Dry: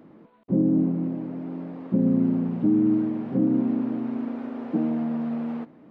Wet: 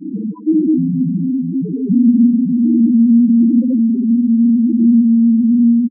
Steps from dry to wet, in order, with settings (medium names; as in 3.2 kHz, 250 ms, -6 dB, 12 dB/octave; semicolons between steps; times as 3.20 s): flutter echo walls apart 10.2 m, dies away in 1.3 s; in parallel at -4 dB: fuzz box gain 49 dB, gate -53 dBFS; on the sum: granulator 100 ms, grains 20 per s, pitch spread up and down by 0 st; loudest bins only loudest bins 2; trim +7 dB